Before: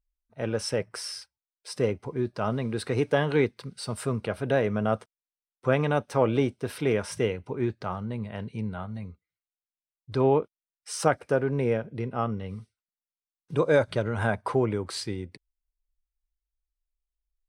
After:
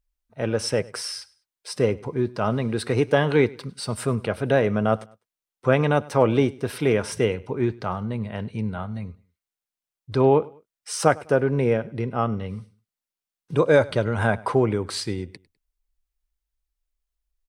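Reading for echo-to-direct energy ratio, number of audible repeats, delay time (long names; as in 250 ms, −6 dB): −22.0 dB, 2, 101 ms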